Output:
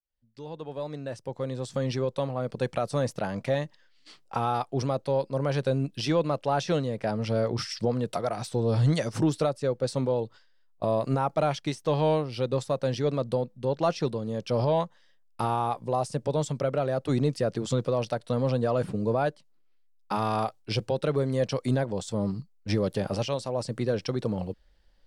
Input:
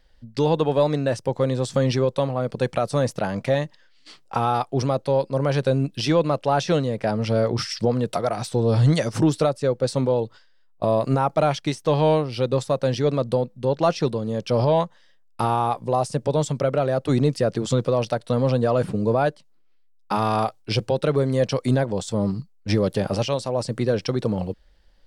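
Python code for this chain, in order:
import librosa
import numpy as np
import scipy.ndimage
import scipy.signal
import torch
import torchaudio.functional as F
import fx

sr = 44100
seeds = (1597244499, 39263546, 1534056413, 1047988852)

y = fx.fade_in_head(x, sr, length_s=2.51)
y = y * librosa.db_to_amplitude(-5.5)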